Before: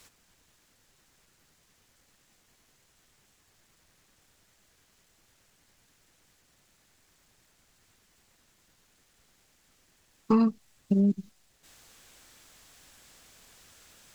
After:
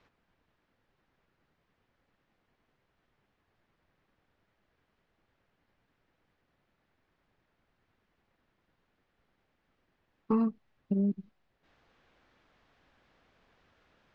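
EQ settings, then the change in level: air absorption 260 m; low shelf 180 Hz -4.5 dB; high shelf 2700 Hz -9.5 dB; -3.0 dB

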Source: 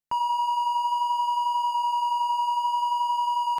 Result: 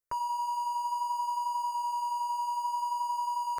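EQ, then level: fixed phaser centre 850 Hz, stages 6; +2.0 dB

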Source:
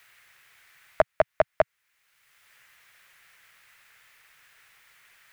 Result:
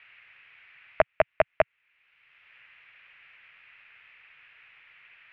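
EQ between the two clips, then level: synth low-pass 2600 Hz, resonance Q 4.1; air absorption 170 m; -1.0 dB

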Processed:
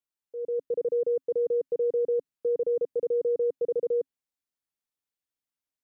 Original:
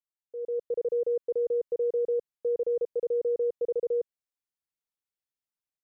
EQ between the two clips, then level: dynamic EQ 160 Hz, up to +7 dB, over -49 dBFS, Q 0.84; bell 270 Hz +7 dB 0.24 oct; 0.0 dB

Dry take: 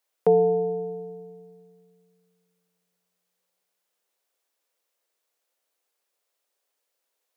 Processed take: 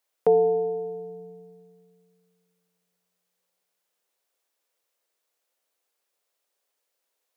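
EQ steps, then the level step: dynamic EQ 180 Hz, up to -8 dB, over -45 dBFS; 0.0 dB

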